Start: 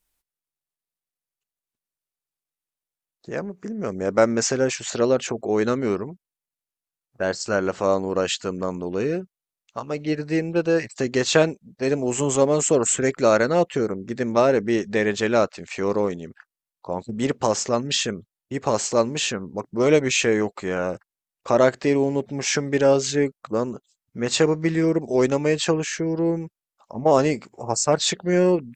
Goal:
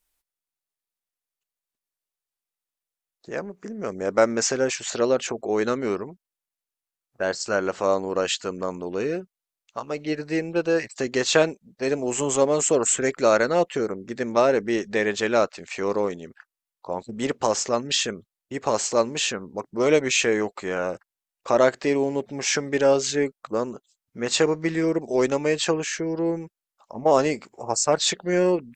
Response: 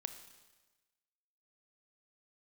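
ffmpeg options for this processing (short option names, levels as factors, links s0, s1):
-af "equalizer=f=110:w=0.52:g=-7.5"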